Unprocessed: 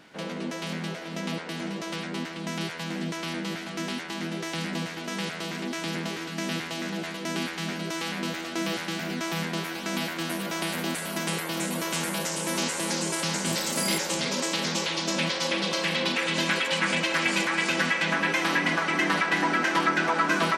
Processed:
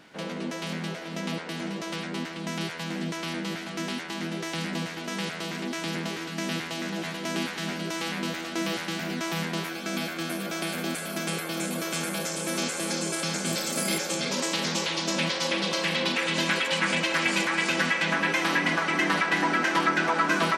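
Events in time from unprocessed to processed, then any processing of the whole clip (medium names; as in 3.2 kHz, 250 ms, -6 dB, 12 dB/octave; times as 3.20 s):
6.43–7.19 s: echo throw 530 ms, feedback 55%, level -9.5 dB
9.69–14.31 s: comb of notches 960 Hz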